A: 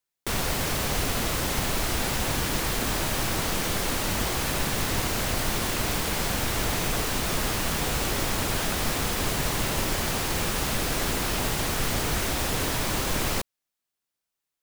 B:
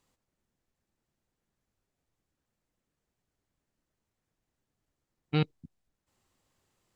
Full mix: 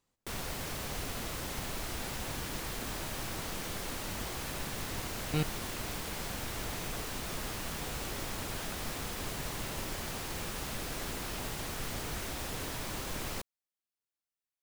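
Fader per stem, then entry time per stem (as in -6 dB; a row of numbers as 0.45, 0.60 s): -11.5, -4.5 dB; 0.00, 0.00 s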